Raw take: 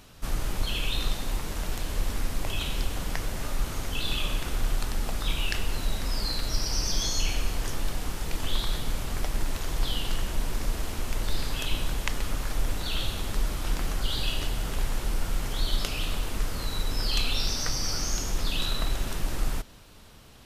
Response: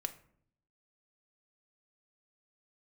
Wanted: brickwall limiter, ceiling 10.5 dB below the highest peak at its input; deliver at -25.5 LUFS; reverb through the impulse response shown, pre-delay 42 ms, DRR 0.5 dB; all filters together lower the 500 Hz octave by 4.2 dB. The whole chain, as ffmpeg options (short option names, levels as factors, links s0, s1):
-filter_complex "[0:a]equalizer=f=500:t=o:g=-5.5,alimiter=limit=0.112:level=0:latency=1,asplit=2[s0][s1];[1:a]atrim=start_sample=2205,adelay=42[s2];[s1][s2]afir=irnorm=-1:irlink=0,volume=1[s3];[s0][s3]amix=inputs=2:normalize=0,volume=1.58"